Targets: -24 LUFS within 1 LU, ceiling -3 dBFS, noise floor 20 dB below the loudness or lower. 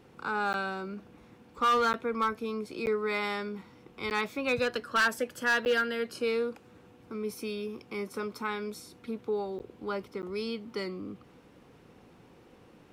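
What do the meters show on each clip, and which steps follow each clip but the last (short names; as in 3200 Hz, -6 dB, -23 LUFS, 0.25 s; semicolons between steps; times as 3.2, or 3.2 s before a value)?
clipped 0.6%; flat tops at -21.0 dBFS; dropouts 7; longest dropout 9.8 ms; loudness -31.5 LUFS; peak -21.0 dBFS; loudness target -24.0 LUFS
-> clip repair -21 dBFS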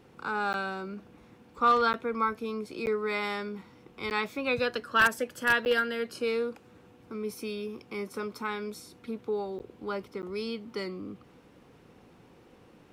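clipped 0.0%; dropouts 7; longest dropout 9.8 ms
-> interpolate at 0.53/1.93/2.86/4.1/5.65/9.59/10.22, 9.8 ms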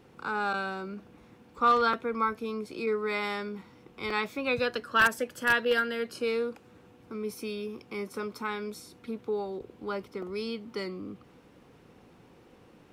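dropouts 0; loudness -30.5 LUFS; peak -12.0 dBFS; loudness target -24.0 LUFS
-> gain +6.5 dB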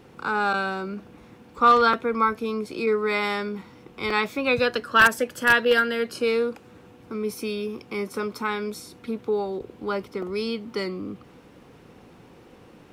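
loudness -24.0 LUFS; peak -5.5 dBFS; noise floor -51 dBFS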